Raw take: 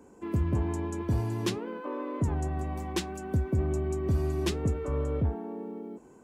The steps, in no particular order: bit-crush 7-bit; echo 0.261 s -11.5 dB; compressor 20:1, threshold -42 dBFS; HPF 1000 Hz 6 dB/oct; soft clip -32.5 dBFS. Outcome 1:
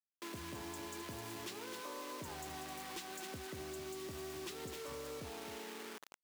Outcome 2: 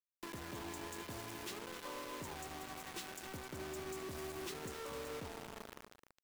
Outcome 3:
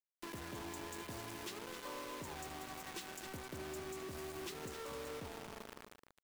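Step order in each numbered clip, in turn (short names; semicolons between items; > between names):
echo > bit-crush > HPF > soft clip > compressor; HPF > soft clip > bit-crush > compressor > echo; HPF > bit-crush > soft clip > echo > compressor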